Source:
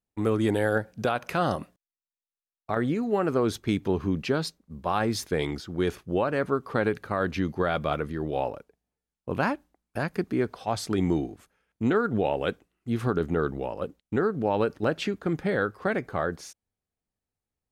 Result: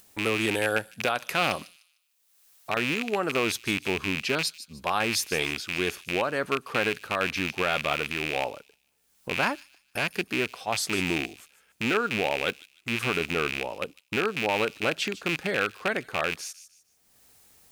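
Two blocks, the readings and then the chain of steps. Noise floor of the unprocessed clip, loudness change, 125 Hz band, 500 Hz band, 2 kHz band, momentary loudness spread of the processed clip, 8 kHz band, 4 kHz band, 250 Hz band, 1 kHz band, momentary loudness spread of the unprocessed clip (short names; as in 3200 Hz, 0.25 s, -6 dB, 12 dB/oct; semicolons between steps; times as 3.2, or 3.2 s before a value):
under -85 dBFS, +0.5 dB, -7.0 dB, -3.0 dB, +7.0 dB, 6 LU, +8.5 dB, +9.0 dB, -5.0 dB, 0.0 dB, 8 LU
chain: rattling part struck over -32 dBFS, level -19 dBFS; tilt +2.5 dB/oct; upward compressor, threshold -35 dBFS; thin delay 0.151 s, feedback 31%, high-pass 4500 Hz, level -11 dB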